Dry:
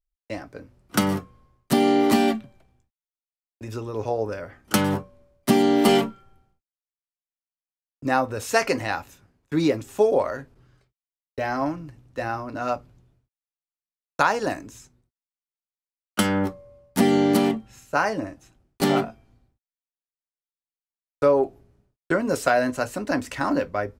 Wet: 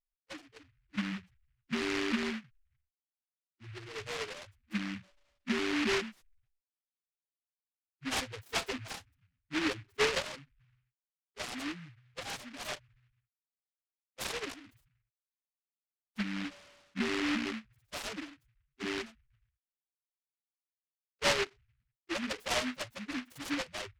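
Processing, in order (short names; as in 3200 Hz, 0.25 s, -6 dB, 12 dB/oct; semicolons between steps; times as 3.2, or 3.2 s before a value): loudest bins only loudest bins 2; noise-modulated delay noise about 1900 Hz, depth 0.33 ms; gain -8.5 dB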